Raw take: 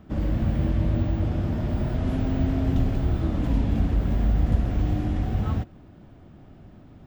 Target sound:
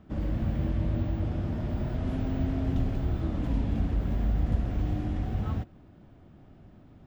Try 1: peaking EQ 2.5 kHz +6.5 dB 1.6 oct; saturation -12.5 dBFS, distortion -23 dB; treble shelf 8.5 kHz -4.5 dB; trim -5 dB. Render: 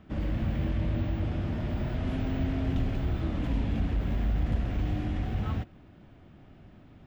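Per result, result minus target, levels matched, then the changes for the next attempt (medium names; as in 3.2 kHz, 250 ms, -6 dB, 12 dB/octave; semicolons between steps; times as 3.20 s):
saturation: distortion +22 dB; 2 kHz band +5.0 dB
change: saturation -0.5 dBFS, distortion -45 dB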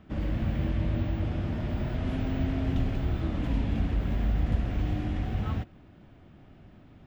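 2 kHz band +5.0 dB
remove: peaking EQ 2.5 kHz +6.5 dB 1.6 oct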